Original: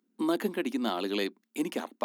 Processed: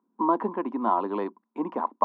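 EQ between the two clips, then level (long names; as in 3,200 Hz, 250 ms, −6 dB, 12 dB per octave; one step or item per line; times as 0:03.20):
low-pass with resonance 1,000 Hz, resonance Q 10
0.0 dB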